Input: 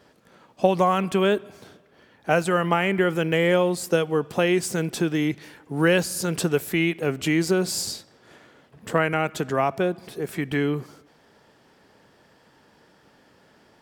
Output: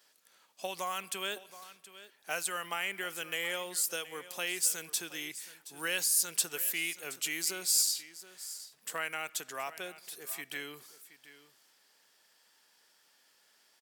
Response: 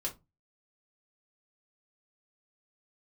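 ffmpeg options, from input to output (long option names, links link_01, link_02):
-af "aderivative,aecho=1:1:723:0.158,volume=2dB"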